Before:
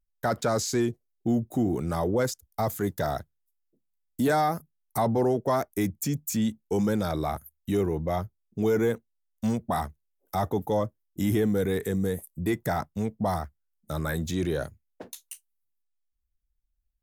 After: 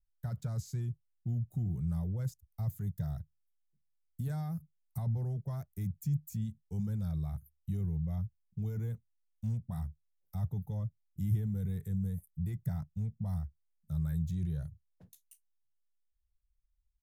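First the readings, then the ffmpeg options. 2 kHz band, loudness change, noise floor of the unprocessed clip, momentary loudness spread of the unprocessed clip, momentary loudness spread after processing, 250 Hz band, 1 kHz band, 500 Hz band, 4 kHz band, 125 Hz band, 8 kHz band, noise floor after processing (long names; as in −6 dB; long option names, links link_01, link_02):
below −20 dB, −9.0 dB, −77 dBFS, 12 LU, 7 LU, −12.0 dB, −25.5 dB, −26.0 dB, below −20 dB, −0.5 dB, below −15 dB, −77 dBFS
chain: -af "firequalizer=gain_entry='entry(160,0);entry(260,-26);entry(13000,-15)':delay=0.05:min_phase=1"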